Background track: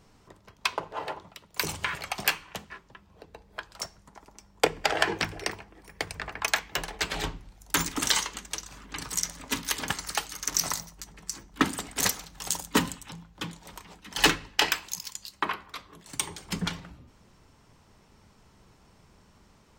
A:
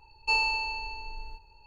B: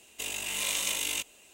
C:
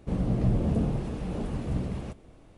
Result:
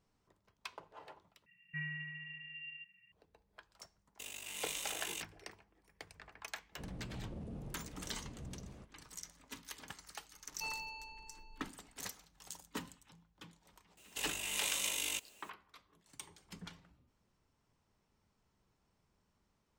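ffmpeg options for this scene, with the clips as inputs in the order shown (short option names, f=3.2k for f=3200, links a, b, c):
-filter_complex "[1:a]asplit=2[a][b];[2:a]asplit=2[c][d];[0:a]volume=-19.5dB[e];[a]lowpass=f=2.4k:t=q:w=0.5098,lowpass=f=2.4k:t=q:w=0.6013,lowpass=f=2.4k:t=q:w=0.9,lowpass=f=2.4k:t=q:w=2.563,afreqshift=-2800[f];[c]aeval=exprs='sgn(val(0))*max(abs(val(0))-0.0075,0)':c=same[g];[3:a]alimiter=limit=-21dB:level=0:latency=1:release=36[h];[b]equalizer=f=270:t=o:w=0.96:g=6[i];[d]acrusher=bits=9:mix=0:aa=0.000001[j];[e]asplit=2[k][l];[k]atrim=end=1.464[m];[f]atrim=end=1.66,asetpts=PTS-STARTPTS,volume=-11dB[n];[l]atrim=start=3.116[o];[g]atrim=end=1.53,asetpts=PTS-STARTPTS,volume=-9.5dB,afade=t=in:d=0.004:c=hsin,afade=t=out:st=1.526:d=0.004:c=hsin,adelay=4000[p];[h]atrim=end=2.57,asetpts=PTS-STARTPTS,volume=-17.5dB,afade=t=in:d=0.004:c=hsin,afade=t=out:st=2.566:d=0.004:c=hsin,adelay=6720[q];[i]atrim=end=1.66,asetpts=PTS-STARTPTS,volume=-17dB,afade=t=in:d=0.004:c=hsin,afade=t=out:st=1.656:d=0.004:c=hsin,adelay=10330[r];[j]atrim=end=1.53,asetpts=PTS-STARTPTS,volume=-6dB,afade=t=in:d=0.004:c=hsin,afade=t=out:st=1.526:d=0.004:c=hsin,adelay=13970[s];[m][n]acrossfade=d=0.004:c1=hsin:c2=hsin[t];[t][o]acrossfade=d=0.004:c1=hsin:c2=hsin[u];[u][p][q][r][s]amix=inputs=5:normalize=0"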